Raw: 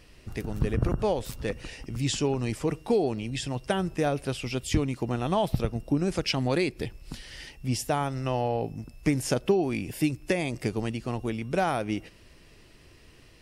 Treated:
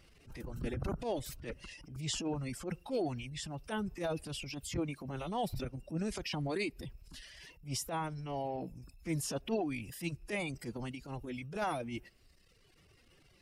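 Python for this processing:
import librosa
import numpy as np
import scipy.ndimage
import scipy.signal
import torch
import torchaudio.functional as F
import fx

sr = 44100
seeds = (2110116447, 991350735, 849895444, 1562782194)

y = fx.pitch_keep_formants(x, sr, semitones=2.0)
y = fx.dereverb_blind(y, sr, rt60_s=1.2)
y = fx.transient(y, sr, attack_db=-11, sustain_db=5)
y = y * 10.0 ** (-7.0 / 20.0)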